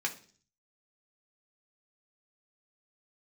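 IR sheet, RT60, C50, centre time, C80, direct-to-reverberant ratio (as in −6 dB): 0.45 s, 14.0 dB, 9 ms, 19.0 dB, 0.5 dB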